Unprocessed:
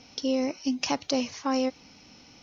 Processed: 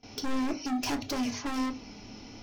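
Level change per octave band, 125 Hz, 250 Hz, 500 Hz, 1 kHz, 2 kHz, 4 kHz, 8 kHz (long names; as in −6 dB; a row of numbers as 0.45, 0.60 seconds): +5.0 dB, −2.5 dB, −10.5 dB, −2.5 dB, −0.5 dB, −4.0 dB, can't be measured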